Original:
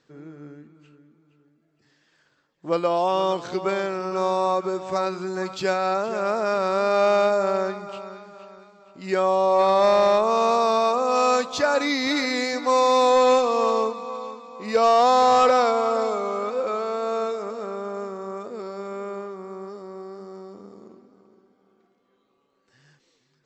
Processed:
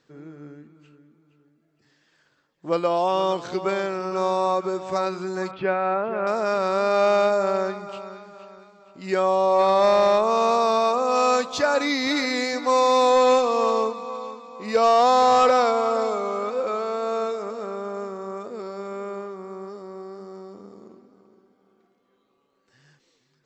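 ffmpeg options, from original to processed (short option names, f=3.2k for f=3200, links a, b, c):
-filter_complex "[0:a]asettb=1/sr,asplit=3[a][b][c];[a]atrim=end=5.514[d];[b]atrim=start=5.51:end=6.27,asetpts=PTS-STARTPTS,afade=t=in:d=0.004:c=qsin,afade=t=out:st=0.756:d=0.004:c=qsin,lowpass=f=2.6k:w=0.5412,lowpass=f=2.6k:w=1.3066[e];[c]atrim=start=6.266[f];[d][e]acrossfade=d=0.004:c1=hsin:c2=qsin[g];[g][f]acrossfade=d=0.004:c1=qsin:c2=hsin"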